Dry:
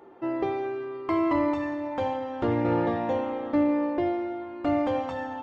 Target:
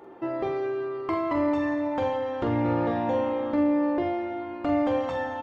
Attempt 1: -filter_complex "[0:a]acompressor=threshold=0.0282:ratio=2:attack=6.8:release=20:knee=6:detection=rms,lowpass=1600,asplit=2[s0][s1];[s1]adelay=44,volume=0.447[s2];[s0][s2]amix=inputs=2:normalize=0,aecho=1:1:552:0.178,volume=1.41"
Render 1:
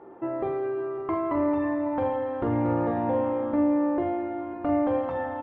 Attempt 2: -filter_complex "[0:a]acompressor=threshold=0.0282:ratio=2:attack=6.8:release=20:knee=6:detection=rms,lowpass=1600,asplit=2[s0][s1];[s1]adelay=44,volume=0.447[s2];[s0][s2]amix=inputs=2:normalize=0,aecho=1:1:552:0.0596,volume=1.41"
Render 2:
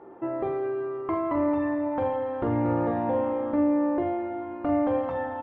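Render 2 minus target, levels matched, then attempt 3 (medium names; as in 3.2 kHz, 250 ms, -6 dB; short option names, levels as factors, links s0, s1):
2 kHz band -4.0 dB
-filter_complex "[0:a]acompressor=threshold=0.0282:ratio=2:attack=6.8:release=20:knee=6:detection=rms,asplit=2[s0][s1];[s1]adelay=44,volume=0.447[s2];[s0][s2]amix=inputs=2:normalize=0,aecho=1:1:552:0.0596,volume=1.41"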